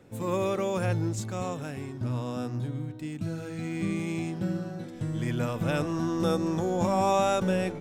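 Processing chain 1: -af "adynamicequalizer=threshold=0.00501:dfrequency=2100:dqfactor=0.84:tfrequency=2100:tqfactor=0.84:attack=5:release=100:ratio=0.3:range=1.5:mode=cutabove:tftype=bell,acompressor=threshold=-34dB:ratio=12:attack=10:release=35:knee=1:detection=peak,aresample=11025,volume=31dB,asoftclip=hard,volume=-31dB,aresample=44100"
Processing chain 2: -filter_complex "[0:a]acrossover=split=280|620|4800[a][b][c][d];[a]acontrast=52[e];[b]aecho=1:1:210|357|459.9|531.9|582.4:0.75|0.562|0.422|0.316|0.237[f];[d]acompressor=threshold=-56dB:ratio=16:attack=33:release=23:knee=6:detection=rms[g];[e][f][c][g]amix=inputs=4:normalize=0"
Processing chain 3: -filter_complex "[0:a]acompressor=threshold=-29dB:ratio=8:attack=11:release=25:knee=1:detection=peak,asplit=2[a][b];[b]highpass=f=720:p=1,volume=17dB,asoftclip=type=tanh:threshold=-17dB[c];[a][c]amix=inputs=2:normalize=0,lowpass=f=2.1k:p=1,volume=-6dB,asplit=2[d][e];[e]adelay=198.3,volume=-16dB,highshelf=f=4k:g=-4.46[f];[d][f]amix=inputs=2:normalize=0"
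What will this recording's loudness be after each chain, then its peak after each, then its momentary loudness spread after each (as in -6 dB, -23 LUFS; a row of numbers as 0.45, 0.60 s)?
-36.5, -26.0, -29.0 LUFS; -29.5, -10.5, -17.5 dBFS; 2, 8, 8 LU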